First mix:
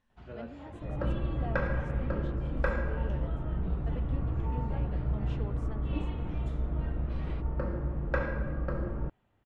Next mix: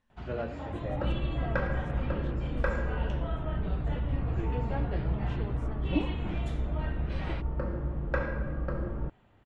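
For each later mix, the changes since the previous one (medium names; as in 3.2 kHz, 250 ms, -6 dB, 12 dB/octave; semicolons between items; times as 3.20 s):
first sound +9.5 dB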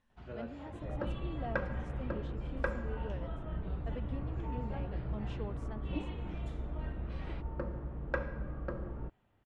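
first sound -10.0 dB; second sound: send -11.0 dB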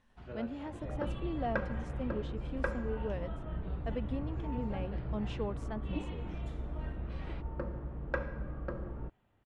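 speech +6.5 dB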